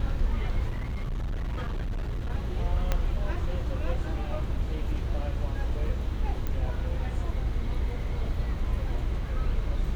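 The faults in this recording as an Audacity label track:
0.690000	2.320000	clipped -27.5 dBFS
2.920000	2.920000	pop -12 dBFS
6.470000	6.470000	pop -19 dBFS

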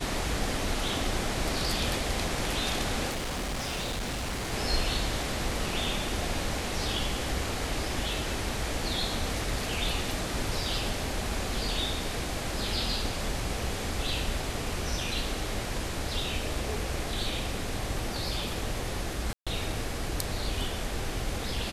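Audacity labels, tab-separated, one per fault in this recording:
3.090000	4.530000	clipped -29.5 dBFS
19.330000	19.470000	dropout 136 ms

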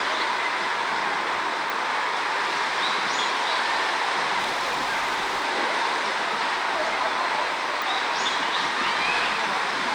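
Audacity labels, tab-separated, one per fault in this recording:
1.700000	1.700000	pop
4.380000	5.450000	clipped -21.5 dBFS
7.820000	7.820000	pop

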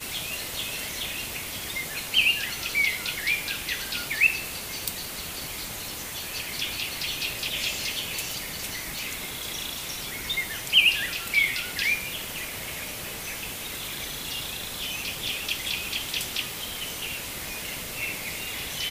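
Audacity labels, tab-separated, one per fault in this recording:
8.990000	8.990000	pop

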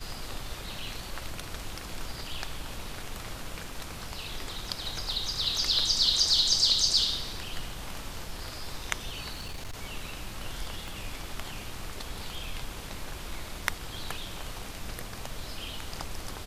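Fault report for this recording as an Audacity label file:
9.330000	9.760000	clipped -33.5 dBFS
10.880000	10.880000	pop

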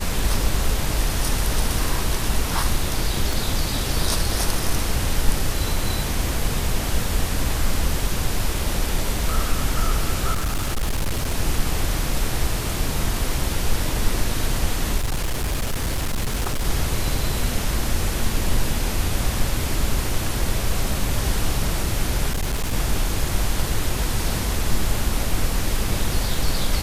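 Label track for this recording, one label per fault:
3.330000	3.330000	pop
10.330000	11.340000	clipped -18.5 dBFS
14.970000	16.650000	clipped -19 dBFS
22.320000	22.740000	clipped -19 dBFS

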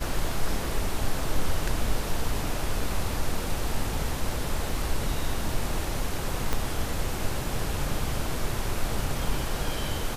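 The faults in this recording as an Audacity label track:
6.530000	6.530000	pop -11 dBFS

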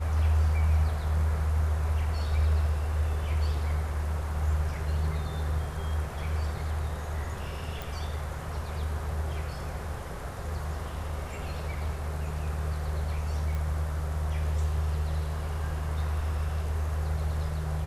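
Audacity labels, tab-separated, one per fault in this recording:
7.820000	7.820000	pop
13.550000	13.550000	pop

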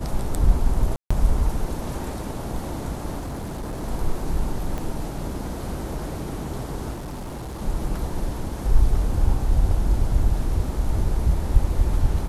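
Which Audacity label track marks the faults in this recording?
0.960000	1.100000	dropout 145 ms
3.190000	3.840000	clipped -27 dBFS
4.780000	4.780000	pop -17 dBFS
6.930000	7.620000	clipped -29.5 dBFS

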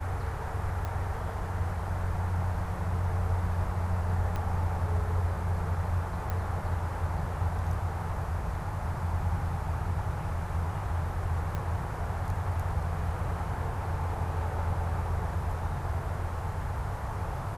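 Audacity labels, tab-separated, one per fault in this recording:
0.850000	0.850000	pop -22 dBFS
4.360000	4.360000	pop -21 dBFS
6.300000	6.300000	pop -20 dBFS
11.550000	11.550000	pop -21 dBFS

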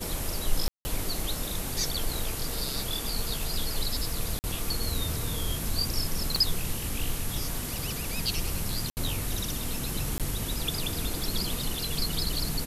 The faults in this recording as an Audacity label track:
0.680000	0.850000	dropout 170 ms
4.390000	4.440000	dropout 49 ms
6.360000	6.360000	pop -14 dBFS
8.900000	8.970000	dropout 69 ms
10.180000	10.200000	dropout 17 ms

